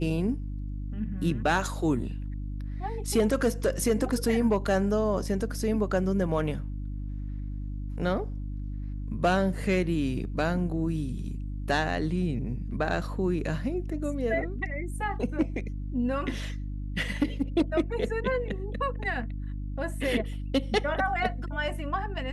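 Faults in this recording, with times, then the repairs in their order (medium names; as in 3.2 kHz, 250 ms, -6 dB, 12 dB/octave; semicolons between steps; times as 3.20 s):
hum 50 Hz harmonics 6 -34 dBFS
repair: de-hum 50 Hz, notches 6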